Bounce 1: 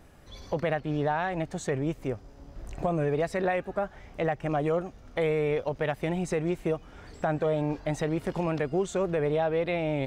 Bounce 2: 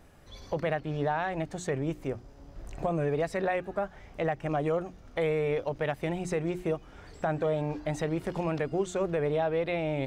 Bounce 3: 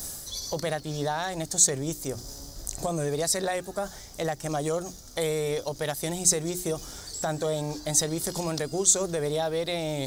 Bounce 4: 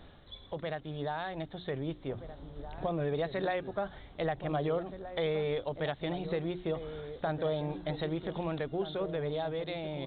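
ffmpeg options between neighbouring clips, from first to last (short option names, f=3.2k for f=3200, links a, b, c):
-af "bandreject=f=60:t=h:w=6,bandreject=f=120:t=h:w=6,bandreject=f=180:t=h:w=6,bandreject=f=240:t=h:w=6,bandreject=f=300:t=h:w=6,bandreject=f=360:t=h:w=6,volume=-1.5dB"
-af "areverse,acompressor=mode=upward:threshold=-34dB:ratio=2.5,areverse,aexciter=amount=13.5:drive=6.3:freq=4k"
-filter_complex "[0:a]dynaudnorm=f=630:g=5:m=5dB,asplit=2[a][b];[b]adelay=1574,volume=-10dB,highshelf=f=4k:g=-35.4[c];[a][c]amix=inputs=2:normalize=0,aresample=8000,aresample=44100,volume=-7.5dB"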